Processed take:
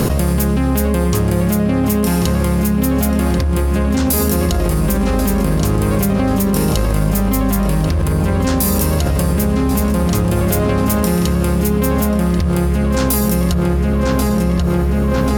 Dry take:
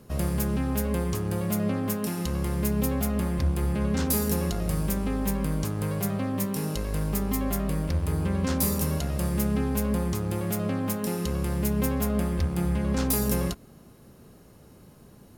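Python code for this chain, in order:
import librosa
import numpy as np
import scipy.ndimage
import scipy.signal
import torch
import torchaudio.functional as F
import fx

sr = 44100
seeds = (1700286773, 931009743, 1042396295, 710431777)

p1 = x + fx.echo_filtered(x, sr, ms=1087, feedback_pct=60, hz=4200.0, wet_db=-6.5, dry=0)
p2 = fx.env_flatten(p1, sr, amount_pct=100)
y = p2 * librosa.db_to_amplitude(5.5)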